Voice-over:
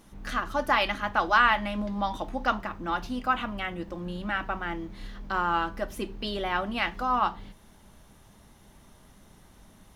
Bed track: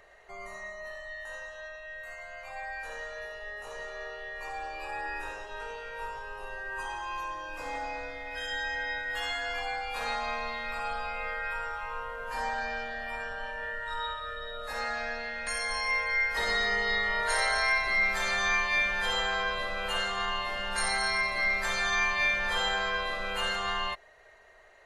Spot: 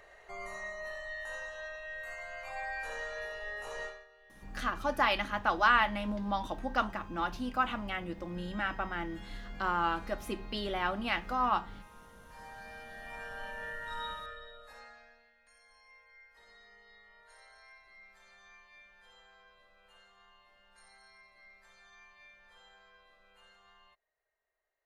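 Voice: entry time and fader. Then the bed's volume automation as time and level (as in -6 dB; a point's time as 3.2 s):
4.30 s, -4.0 dB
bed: 3.86 s 0 dB
4.07 s -20 dB
12.25 s -20 dB
13.4 s -5 dB
14.2 s -5 dB
15.36 s -31 dB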